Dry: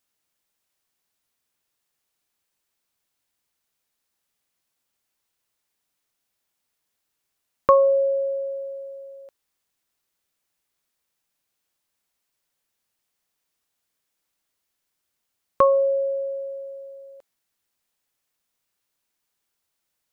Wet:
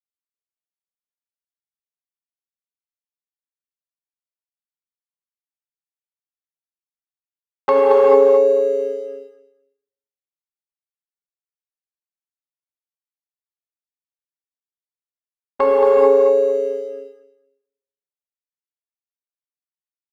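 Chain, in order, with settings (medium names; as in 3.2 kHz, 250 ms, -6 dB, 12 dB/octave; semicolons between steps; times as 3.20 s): gate -32 dBFS, range -34 dB; waveshaping leveller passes 1; in parallel at +0.5 dB: compression, threshold -24 dBFS, peak gain reduction 13.5 dB; on the sum: harmony voices -12 st -15 dB, -5 st -5 dB, -4 st -9 dB; on a send: feedback delay 225 ms, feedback 16%, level -6 dB; on the sum: gated-style reverb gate 470 ms flat, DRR -4 dB; trim -8 dB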